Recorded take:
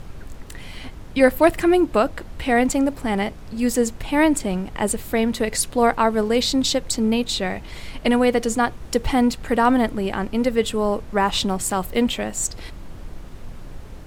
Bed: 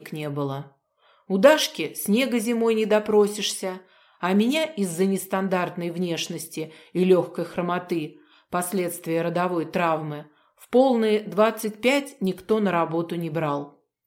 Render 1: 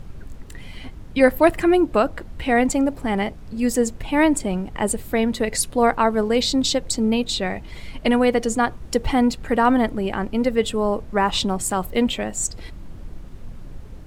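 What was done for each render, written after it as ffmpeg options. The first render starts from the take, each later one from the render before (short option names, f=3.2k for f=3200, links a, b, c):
-af "afftdn=nr=6:nf=-38"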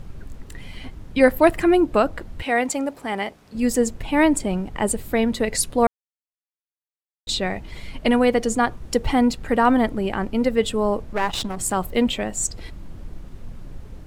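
-filter_complex "[0:a]asettb=1/sr,asplit=3[a][b][c];[a]atrim=end=2.424[d];[b]atrim=start=2.42:end=3.55,asetpts=PTS-STARTPTS,afade=t=in:d=0.004:c=qsin,afade=t=out:st=1.126:d=0.004:c=qsin,highpass=f=520:p=1[e];[c]atrim=start=3.546[f];[d][e]acrossfade=d=0.004:c1=hsin:c2=qsin[g];[g][f]acrossfade=d=0.004:c1=qsin:c2=hsin,asettb=1/sr,asplit=3[h][i][j];[h]atrim=end=11.134[k];[i]atrim=start=11.13:end=11.61,asetpts=PTS-STARTPTS,afade=t=in:d=0.004:c=qsin,afade=t=out:st=0.476:d=0.004:c=qsin,aeval=exprs='if(lt(val(0),0),0.251*val(0),val(0))':c=same[l];[j]atrim=start=11.606[m];[k][l]acrossfade=d=0.004:c1=hsin:c2=qsin[n];[n][m]acrossfade=d=0.004:c1=qsin:c2=hsin,asplit=3[o][p][q];[o]atrim=end=5.87,asetpts=PTS-STARTPTS,afade=t=out:st=5.866:d=0.004:c=hsin[r];[p]atrim=start=5.87:end=7.27,asetpts=PTS-STARTPTS,volume=0[s];[q]atrim=start=7.27,asetpts=PTS-STARTPTS,afade=t=in:d=0.004:c=hsin[t];[r][s][t]concat=n=3:v=0:a=1"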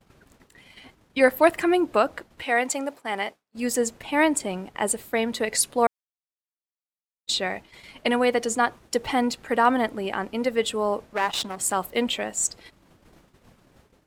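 -af "agate=range=-33dB:threshold=-28dB:ratio=3:detection=peak,highpass=f=510:p=1"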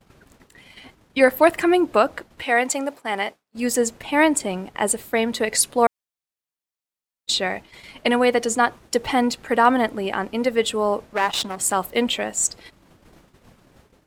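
-af "volume=3.5dB,alimiter=limit=-3dB:level=0:latency=1"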